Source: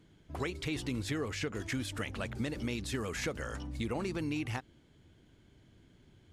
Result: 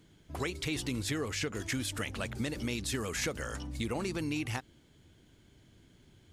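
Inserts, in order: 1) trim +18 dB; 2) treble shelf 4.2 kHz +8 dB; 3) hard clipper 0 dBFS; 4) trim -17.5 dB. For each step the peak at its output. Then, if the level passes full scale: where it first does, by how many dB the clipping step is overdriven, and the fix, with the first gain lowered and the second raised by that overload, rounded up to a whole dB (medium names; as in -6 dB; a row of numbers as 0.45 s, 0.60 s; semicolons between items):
-4.5 dBFS, -2.0 dBFS, -2.0 dBFS, -19.5 dBFS; nothing clips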